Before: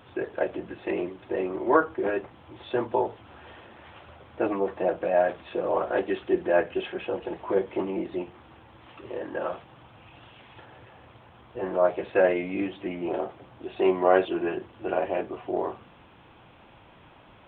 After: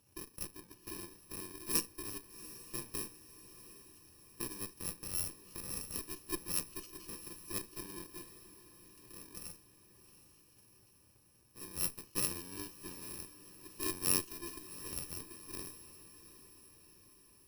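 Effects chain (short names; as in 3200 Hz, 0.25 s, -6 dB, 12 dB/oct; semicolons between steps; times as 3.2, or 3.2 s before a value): FFT order left unsorted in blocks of 64 samples; added harmonics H 2 -12 dB, 3 -13 dB, 8 -21 dB, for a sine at -6.5 dBFS; diffused feedback echo 0.746 s, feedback 56%, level -14.5 dB; gain -7.5 dB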